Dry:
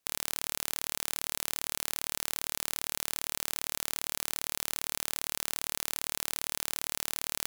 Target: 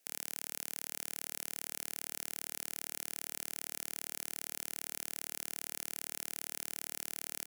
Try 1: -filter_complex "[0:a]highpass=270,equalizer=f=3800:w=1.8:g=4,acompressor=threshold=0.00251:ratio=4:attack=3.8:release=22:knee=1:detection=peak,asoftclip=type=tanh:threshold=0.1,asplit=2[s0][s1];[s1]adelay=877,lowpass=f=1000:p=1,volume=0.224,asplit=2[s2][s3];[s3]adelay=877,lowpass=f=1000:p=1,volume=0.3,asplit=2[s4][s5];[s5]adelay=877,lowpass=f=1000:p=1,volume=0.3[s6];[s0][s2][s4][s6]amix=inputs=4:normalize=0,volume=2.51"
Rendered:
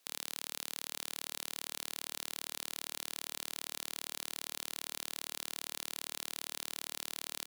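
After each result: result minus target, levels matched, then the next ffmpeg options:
4 kHz band +6.5 dB; 1 kHz band +6.0 dB
-filter_complex "[0:a]highpass=270,equalizer=f=3800:w=1.8:g=-4.5,acompressor=threshold=0.00251:ratio=4:attack=3.8:release=22:knee=1:detection=peak,asoftclip=type=tanh:threshold=0.1,asplit=2[s0][s1];[s1]adelay=877,lowpass=f=1000:p=1,volume=0.224,asplit=2[s2][s3];[s3]adelay=877,lowpass=f=1000:p=1,volume=0.3,asplit=2[s4][s5];[s5]adelay=877,lowpass=f=1000:p=1,volume=0.3[s6];[s0][s2][s4][s6]amix=inputs=4:normalize=0,volume=2.51"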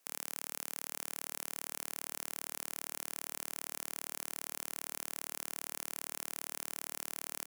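1 kHz band +6.5 dB
-filter_complex "[0:a]highpass=270,equalizer=f=3800:w=1.8:g=-4.5,acompressor=threshold=0.00251:ratio=4:attack=3.8:release=22:knee=1:detection=peak,equalizer=f=1100:w=3:g=-13,asoftclip=type=tanh:threshold=0.1,asplit=2[s0][s1];[s1]adelay=877,lowpass=f=1000:p=1,volume=0.224,asplit=2[s2][s3];[s3]adelay=877,lowpass=f=1000:p=1,volume=0.3,asplit=2[s4][s5];[s5]adelay=877,lowpass=f=1000:p=1,volume=0.3[s6];[s0][s2][s4][s6]amix=inputs=4:normalize=0,volume=2.51"

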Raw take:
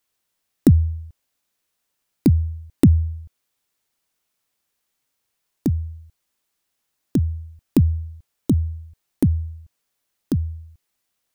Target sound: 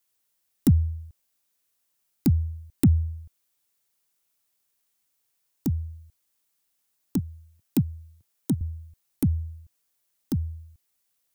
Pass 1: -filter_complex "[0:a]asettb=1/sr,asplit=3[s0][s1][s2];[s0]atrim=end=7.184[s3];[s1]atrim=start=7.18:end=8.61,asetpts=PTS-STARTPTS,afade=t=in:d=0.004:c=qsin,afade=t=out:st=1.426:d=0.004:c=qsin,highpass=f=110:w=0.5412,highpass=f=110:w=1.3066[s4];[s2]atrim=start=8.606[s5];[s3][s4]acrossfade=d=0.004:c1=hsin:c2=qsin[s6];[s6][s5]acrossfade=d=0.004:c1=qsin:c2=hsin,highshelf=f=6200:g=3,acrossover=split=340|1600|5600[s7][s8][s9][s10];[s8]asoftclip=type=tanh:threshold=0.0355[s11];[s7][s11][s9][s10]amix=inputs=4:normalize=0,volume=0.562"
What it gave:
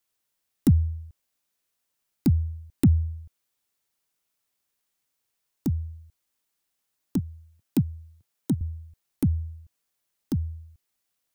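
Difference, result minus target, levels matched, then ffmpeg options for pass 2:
8 kHz band -4.0 dB
-filter_complex "[0:a]asettb=1/sr,asplit=3[s0][s1][s2];[s0]atrim=end=7.184[s3];[s1]atrim=start=7.18:end=8.61,asetpts=PTS-STARTPTS,afade=t=in:d=0.004:c=qsin,afade=t=out:st=1.426:d=0.004:c=qsin,highpass=f=110:w=0.5412,highpass=f=110:w=1.3066[s4];[s2]atrim=start=8.606[s5];[s3][s4]acrossfade=d=0.004:c1=hsin:c2=qsin[s6];[s6][s5]acrossfade=d=0.004:c1=qsin:c2=hsin,highshelf=f=6200:g=9,acrossover=split=340|1600|5600[s7][s8][s9][s10];[s8]asoftclip=type=tanh:threshold=0.0355[s11];[s7][s11][s9][s10]amix=inputs=4:normalize=0,volume=0.562"

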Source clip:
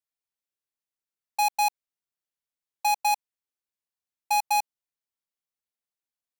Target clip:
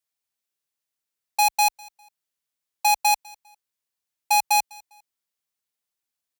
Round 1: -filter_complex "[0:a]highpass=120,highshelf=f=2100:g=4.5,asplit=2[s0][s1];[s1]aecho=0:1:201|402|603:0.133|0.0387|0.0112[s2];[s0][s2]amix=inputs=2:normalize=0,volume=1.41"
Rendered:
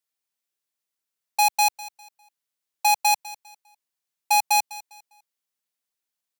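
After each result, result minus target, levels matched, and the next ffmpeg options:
125 Hz band -4.5 dB; echo-to-direct +6.5 dB
-filter_complex "[0:a]highpass=37,highshelf=f=2100:g=4.5,asplit=2[s0][s1];[s1]aecho=0:1:201|402|603:0.133|0.0387|0.0112[s2];[s0][s2]amix=inputs=2:normalize=0,volume=1.41"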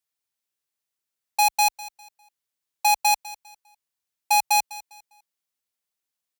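echo-to-direct +6.5 dB
-filter_complex "[0:a]highpass=37,highshelf=f=2100:g=4.5,asplit=2[s0][s1];[s1]aecho=0:1:201|402:0.0631|0.0183[s2];[s0][s2]amix=inputs=2:normalize=0,volume=1.41"

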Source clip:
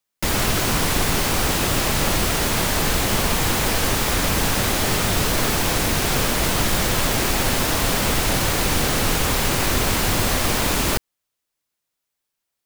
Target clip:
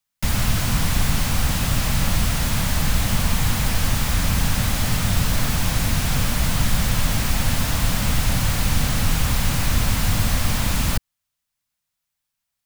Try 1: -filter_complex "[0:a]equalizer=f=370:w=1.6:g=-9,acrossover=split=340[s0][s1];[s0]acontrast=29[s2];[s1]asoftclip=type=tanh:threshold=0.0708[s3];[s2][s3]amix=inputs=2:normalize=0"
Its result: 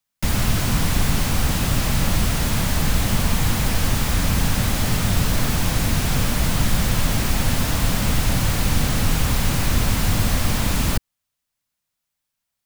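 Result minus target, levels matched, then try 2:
500 Hz band +2.5 dB
-filter_complex "[0:a]equalizer=f=370:w=1.6:g=-16,acrossover=split=340[s0][s1];[s0]acontrast=29[s2];[s1]asoftclip=type=tanh:threshold=0.0708[s3];[s2][s3]amix=inputs=2:normalize=0"

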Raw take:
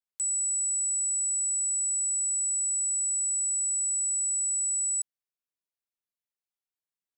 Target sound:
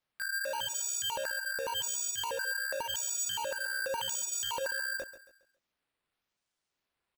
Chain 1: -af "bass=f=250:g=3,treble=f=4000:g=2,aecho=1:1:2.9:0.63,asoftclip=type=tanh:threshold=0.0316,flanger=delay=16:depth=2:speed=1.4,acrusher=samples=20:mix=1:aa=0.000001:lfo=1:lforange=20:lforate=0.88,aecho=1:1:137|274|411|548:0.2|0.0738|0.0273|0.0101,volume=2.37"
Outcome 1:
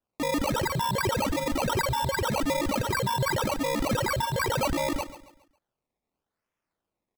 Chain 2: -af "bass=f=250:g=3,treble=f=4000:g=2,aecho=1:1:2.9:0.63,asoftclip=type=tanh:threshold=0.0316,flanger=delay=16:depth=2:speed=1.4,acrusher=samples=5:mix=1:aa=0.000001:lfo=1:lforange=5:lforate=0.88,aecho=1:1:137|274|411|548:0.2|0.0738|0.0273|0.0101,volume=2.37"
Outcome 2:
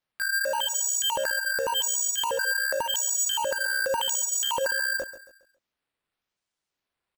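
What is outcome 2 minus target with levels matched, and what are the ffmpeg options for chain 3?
saturation: distortion -5 dB
-af "bass=f=250:g=3,treble=f=4000:g=2,aecho=1:1:2.9:0.63,asoftclip=type=tanh:threshold=0.0112,flanger=delay=16:depth=2:speed=1.4,acrusher=samples=5:mix=1:aa=0.000001:lfo=1:lforange=5:lforate=0.88,aecho=1:1:137|274|411|548:0.2|0.0738|0.0273|0.0101,volume=2.37"

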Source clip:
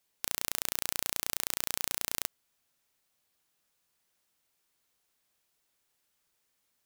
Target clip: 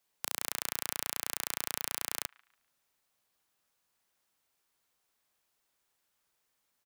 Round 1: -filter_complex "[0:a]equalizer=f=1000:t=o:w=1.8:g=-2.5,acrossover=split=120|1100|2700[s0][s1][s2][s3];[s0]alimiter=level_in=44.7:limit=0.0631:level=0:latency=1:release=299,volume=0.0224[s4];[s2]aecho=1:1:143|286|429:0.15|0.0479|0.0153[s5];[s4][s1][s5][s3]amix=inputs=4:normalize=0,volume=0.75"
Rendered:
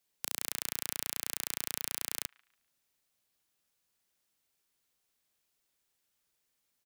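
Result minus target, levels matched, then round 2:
1 kHz band -5.5 dB
-filter_complex "[0:a]equalizer=f=1000:t=o:w=1.8:g=4,acrossover=split=120|1100|2700[s0][s1][s2][s3];[s0]alimiter=level_in=44.7:limit=0.0631:level=0:latency=1:release=299,volume=0.0224[s4];[s2]aecho=1:1:143|286|429:0.15|0.0479|0.0153[s5];[s4][s1][s5][s3]amix=inputs=4:normalize=0,volume=0.75"

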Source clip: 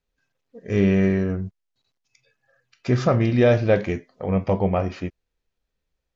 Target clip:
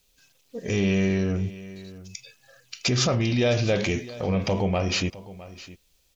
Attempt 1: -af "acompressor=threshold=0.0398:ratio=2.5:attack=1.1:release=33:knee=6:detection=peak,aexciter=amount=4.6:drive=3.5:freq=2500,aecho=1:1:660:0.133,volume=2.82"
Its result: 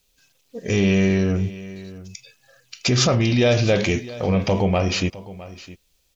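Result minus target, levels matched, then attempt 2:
compression: peak gain reduction -5 dB
-af "acompressor=threshold=0.0158:ratio=2.5:attack=1.1:release=33:knee=6:detection=peak,aexciter=amount=4.6:drive=3.5:freq=2500,aecho=1:1:660:0.133,volume=2.82"

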